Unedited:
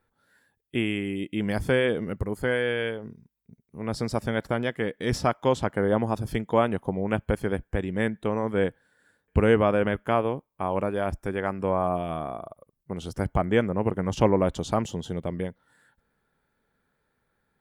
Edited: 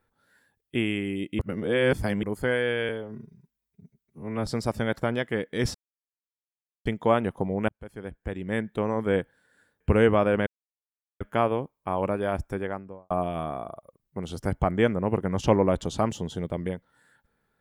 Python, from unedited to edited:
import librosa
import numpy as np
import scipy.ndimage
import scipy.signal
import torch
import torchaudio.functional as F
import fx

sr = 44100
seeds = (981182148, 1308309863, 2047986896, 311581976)

y = fx.studio_fade_out(x, sr, start_s=11.19, length_s=0.65)
y = fx.edit(y, sr, fx.reverse_span(start_s=1.39, length_s=0.84),
    fx.stretch_span(start_s=2.89, length_s=1.05, factor=1.5),
    fx.silence(start_s=5.22, length_s=1.11),
    fx.fade_in_span(start_s=7.16, length_s=1.14),
    fx.insert_silence(at_s=9.94, length_s=0.74), tone=tone)